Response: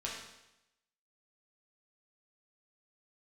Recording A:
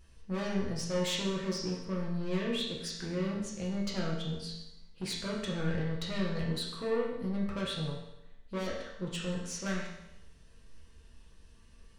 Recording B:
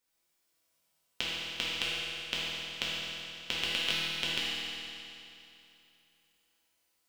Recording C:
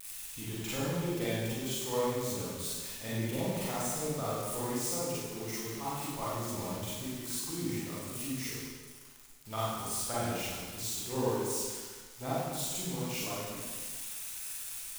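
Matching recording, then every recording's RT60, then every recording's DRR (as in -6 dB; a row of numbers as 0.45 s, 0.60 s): A; 0.90 s, 2.8 s, 1.5 s; -4.5 dB, -8.5 dB, -9.5 dB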